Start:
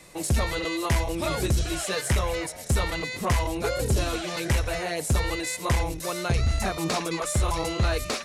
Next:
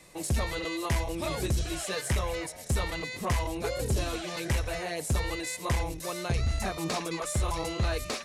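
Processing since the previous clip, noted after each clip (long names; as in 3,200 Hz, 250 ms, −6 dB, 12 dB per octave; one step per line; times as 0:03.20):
notch filter 1,400 Hz, Q 21
level −4.5 dB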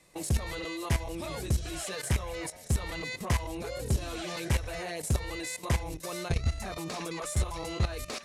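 output level in coarse steps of 13 dB
level +2.5 dB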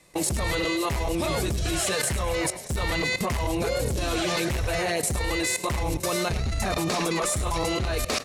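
sine wavefolder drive 5 dB, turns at −18.5 dBFS
output level in coarse steps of 16 dB
echo with shifted repeats 103 ms, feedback 33%, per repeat +36 Hz, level −14 dB
level +6 dB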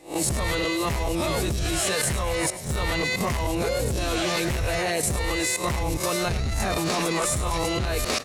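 peak hold with a rise ahead of every peak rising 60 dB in 0.31 s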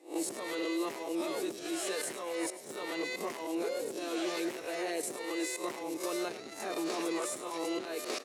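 four-pole ladder high-pass 290 Hz, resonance 50%
level −3 dB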